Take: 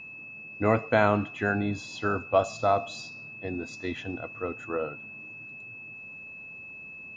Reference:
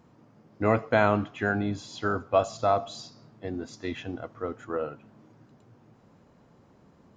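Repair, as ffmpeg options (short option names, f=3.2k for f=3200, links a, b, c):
-af "bandreject=f=2.6k:w=30"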